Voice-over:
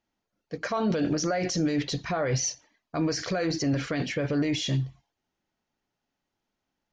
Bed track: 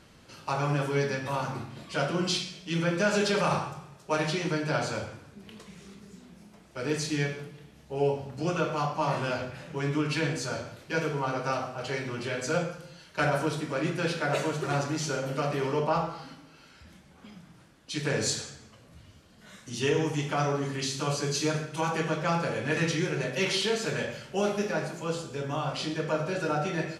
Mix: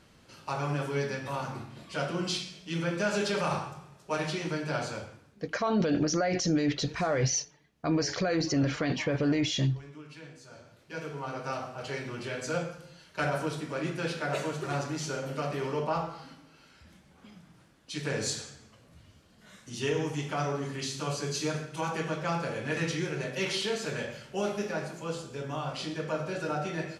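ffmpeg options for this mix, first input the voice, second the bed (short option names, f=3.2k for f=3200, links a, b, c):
-filter_complex "[0:a]adelay=4900,volume=-0.5dB[a];[1:a]volume=12dB,afade=t=out:st=4.82:d=0.78:silence=0.16788,afade=t=in:st=10.47:d=1.28:silence=0.16788[b];[a][b]amix=inputs=2:normalize=0"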